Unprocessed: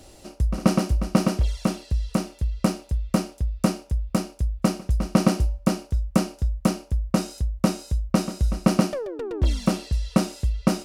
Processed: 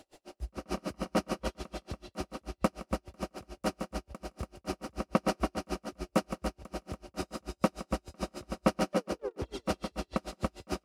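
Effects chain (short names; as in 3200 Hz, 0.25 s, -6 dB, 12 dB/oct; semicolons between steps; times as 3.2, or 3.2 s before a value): tone controls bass -13 dB, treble -7 dB; on a send: tapped delay 85/166/284/699 ms -11.5/-10.5/-5.5/-14 dB; on the sum: dB-linear tremolo 6.8 Hz, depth 39 dB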